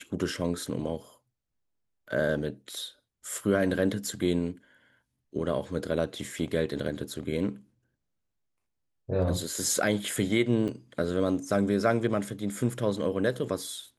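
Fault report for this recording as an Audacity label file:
10.680000	10.680000	drop-out 4.4 ms

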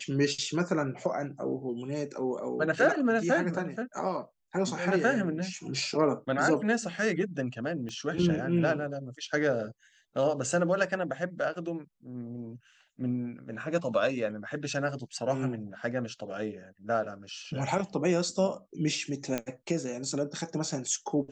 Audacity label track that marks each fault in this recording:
7.890000	7.890000	click −28 dBFS
19.380000	19.380000	click −15 dBFS

